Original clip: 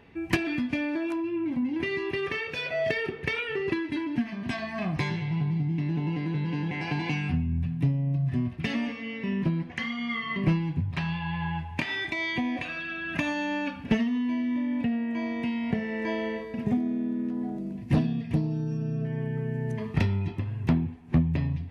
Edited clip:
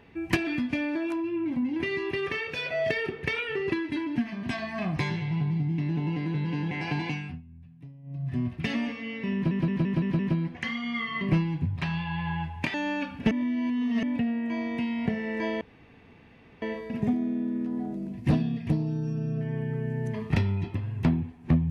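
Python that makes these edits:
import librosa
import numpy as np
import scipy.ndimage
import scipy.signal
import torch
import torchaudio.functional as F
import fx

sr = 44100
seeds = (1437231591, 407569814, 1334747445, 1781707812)

y = fx.edit(x, sr, fx.fade_down_up(start_s=6.99, length_s=1.47, db=-21.0, fade_s=0.43),
    fx.stutter(start_s=9.34, slice_s=0.17, count=6),
    fx.cut(start_s=11.89, length_s=1.5),
    fx.reverse_span(start_s=13.96, length_s=0.72),
    fx.insert_room_tone(at_s=16.26, length_s=1.01), tone=tone)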